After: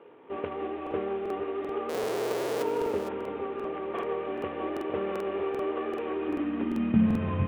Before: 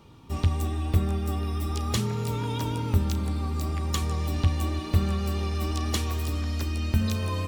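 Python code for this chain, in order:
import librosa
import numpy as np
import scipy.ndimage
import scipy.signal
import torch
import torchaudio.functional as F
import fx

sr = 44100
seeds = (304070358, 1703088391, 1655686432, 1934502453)

y = fx.cvsd(x, sr, bps=16000)
y = fx.lowpass(y, sr, hz=1700.0, slope=6)
y = fx.schmitt(y, sr, flips_db=-30.5, at=(1.89, 2.63))
y = y + 10.0 ** (-9.5 / 20.0) * np.pad(y, (int(457 * sr / 1000.0), 0))[:len(y)]
y = fx.filter_sweep_highpass(y, sr, from_hz=440.0, to_hz=130.0, start_s=6.01, end_s=7.42, q=3.8)
y = fx.buffer_crackle(y, sr, first_s=0.82, period_s=0.39, block=2048, kind='repeat')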